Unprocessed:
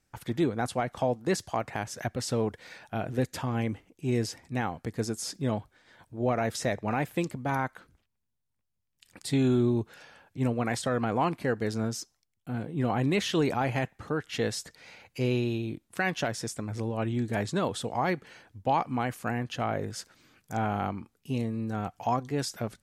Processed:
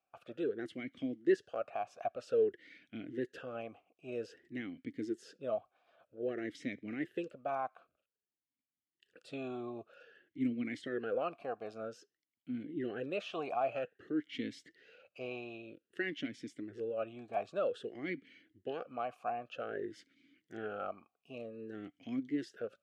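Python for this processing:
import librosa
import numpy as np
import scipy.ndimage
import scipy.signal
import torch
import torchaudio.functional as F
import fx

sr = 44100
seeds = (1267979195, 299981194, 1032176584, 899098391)

y = fx.vowel_sweep(x, sr, vowels='a-i', hz=0.52)
y = y * 10.0 ** (3.0 / 20.0)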